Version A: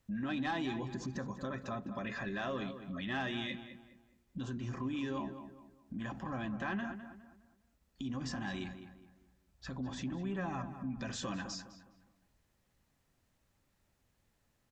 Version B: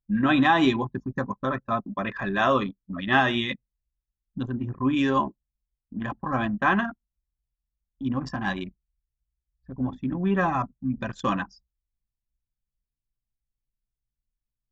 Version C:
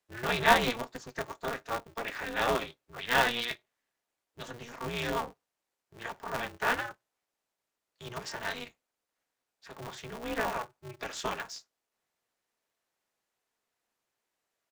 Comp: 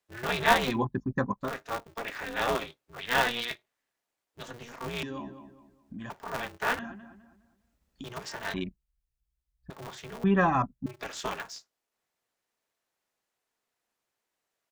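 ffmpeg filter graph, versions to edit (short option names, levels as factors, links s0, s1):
-filter_complex "[1:a]asplit=3[s0][s1][s2];[0:a]asplit=2[s3][s4];[2:a]asplit=6[s5][s6][s7][s8][s9][s10];[s5]atrim=end=0.8[s11];[s0]atrim=start=0.64:end=1.53[s12];[s6]atrim=start=1.37:end=5.032[s13];[s3]atrim=start=5.028:end=6.102[s14];[s7]atrim=start=6.098:end=6.792[s15];[s4]atrim=start=6.788:end=8.042[s16];[s8]atrim=start=8.038:end=8.542[s17];[s1]atrim=start=8.538:end=9.702[s18];[s9]atrim=start=9.698:end=10.242[s19];[s2]atrim=start=10.238:end=10.862[s20];[s10]atrim=start=10.858[s21];[s11][s12]acrossfade=d=0.16:c1=tri:c2=tri[s22];[s22][s13]acrossfade=d=0.16:c1=tri:c2=tri[s23];[s23][s14]acrossfade=d=0.004:c1=hsin:c2=hsin[s24];[s24][s15]acrossfade=d=0.004:c1=hsin:c2=hsin[s25];[s25][s16]acrossfade=d=0.004:c1=hsin:c2=hsin[s26];[s26][s17]acrossfade=d=0.004:c1=hsin:c2=hsin[s27];[s27][s18]acrossfade=d=0.004:c1=hsin:c2=hsin[s28];[s28][s19]acrossfade=d=0.004:c1=hsin:c2=hsin[s29];[s29][s20]acrossfade=d=0.004:c1=hsin:c2=hsin[s30];[s30][s21]acrossfade=d=0.004:c1=hsin:c2=hsin"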